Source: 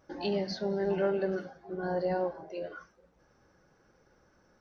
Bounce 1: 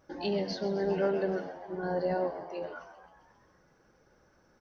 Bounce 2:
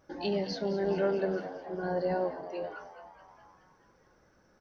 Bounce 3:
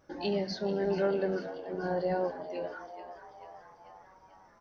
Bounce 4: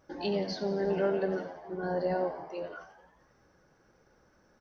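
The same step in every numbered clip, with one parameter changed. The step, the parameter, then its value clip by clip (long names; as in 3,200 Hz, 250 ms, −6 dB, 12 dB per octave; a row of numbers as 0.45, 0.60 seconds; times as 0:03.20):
echo with shifted repeats, delay time: 132, 212, 438, 88 milliseconds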